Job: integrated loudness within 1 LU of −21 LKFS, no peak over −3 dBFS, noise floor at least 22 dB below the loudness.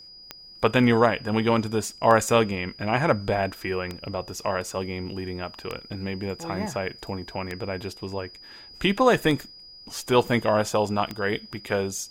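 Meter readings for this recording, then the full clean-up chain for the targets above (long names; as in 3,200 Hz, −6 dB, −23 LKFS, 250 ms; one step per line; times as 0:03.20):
number of clicks 7; interfering tone 4,900 Hz; level of the tone −44 dBFS; integrated loudness −25.5 LKFS; sample peak −3.0 dBFS; target loudness −21.0 LKFS
→ click removal
notch filter 4,900 Hz, Q 30
level +4.5 dB
brickwall limiter −3 dBFS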